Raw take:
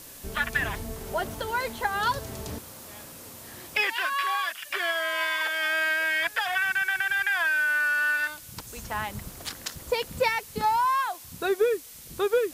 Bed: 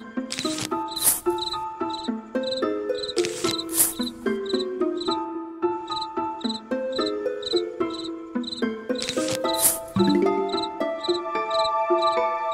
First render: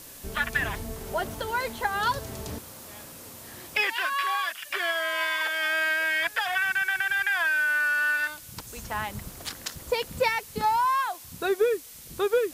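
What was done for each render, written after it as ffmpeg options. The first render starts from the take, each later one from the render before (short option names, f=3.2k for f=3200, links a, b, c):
-af anull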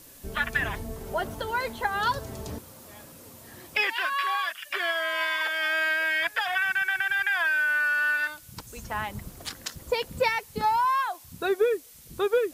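-af "afftdn=nr=6:nf=-45"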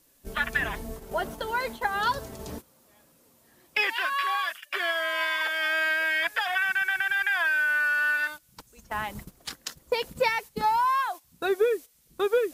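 -af "agate=range=-13dB:threshold=-37dB:ratio=16:detection=peak,equalizer=f=98:t=o:w=0.41:g=-12.5"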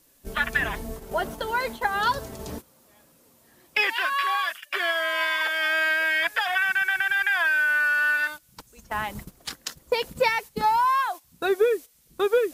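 -af "volume=2.5dB"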